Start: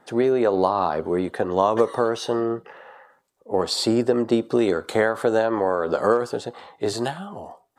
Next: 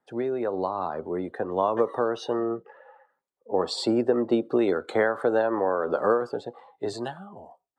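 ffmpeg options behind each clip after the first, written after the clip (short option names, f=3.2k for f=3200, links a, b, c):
-filter_complex "[0:a]afftdn=nr=13:nf=-38,acrossover=split=200|3400[a][b][c];[b]dynaudnorm=f=240:g=11:m=11.5dB[d];[a][d][c]amix=inputs=3:normalize=0,volume=-8.5dB"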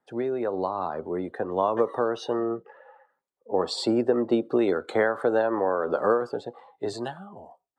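-af anull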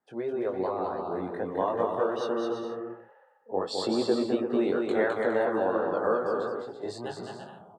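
-filter_complex "[0:a]flanger=delay=18:depth=4.4:speed=2.7,asplit=2[a][b];[b]aecho=0:1:210|336|411.6|457|484.2:0.631|0.398|0.251|0.158|0.1[c];[a][c]amix=inputs=2:normalize=0,volume=-1.5dB"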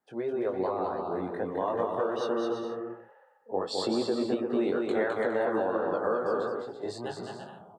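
-af "alimiter=limit=-18dB:level=0:latency=1:release=148"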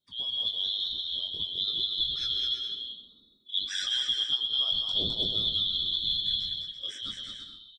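-af "afftfilt=real='real(if(lt(b,272),68*(eq(floor(b/68),0)*1+eq(floor(b/68),1)*3+eq(floor(b/68),2)*0+eq(floor(b/68),3)*2)+mod(b,68),b),0)':imag='imag(if(lt(b,272),68*(eq(floor(b/68),0)*1+eq(floor(b/68),1)*3+eq(floor(b/68),2)*0+eq(floor(b/68),3)*2)+mod(b,68),b),0)':win_size=2048:overlap=0.75,aphaser=in_gain=1:out_gain=1:delay=3:decay=0.28:speed=0.58:type=triangular,aecho=1:1:125:0.224,volume=-1.5dB"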